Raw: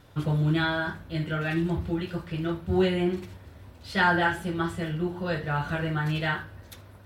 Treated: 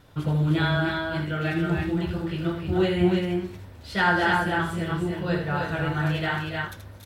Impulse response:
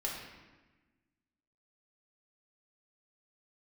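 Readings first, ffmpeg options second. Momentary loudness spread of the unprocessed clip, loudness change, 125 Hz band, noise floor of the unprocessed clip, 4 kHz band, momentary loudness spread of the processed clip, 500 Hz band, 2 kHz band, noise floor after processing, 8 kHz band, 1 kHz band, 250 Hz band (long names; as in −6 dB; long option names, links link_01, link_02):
11 LU, +2.0 dB, +2.5 dB, −50 dBFS, +2.5 dB, 8 LU, +2.5 dB, +2.5 dB, −45 dBFS, +2.5 dB, +2.5 dB, +2.5 dB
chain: -af "aecho=1:1:79|282|310:0.447|0.335|0.668"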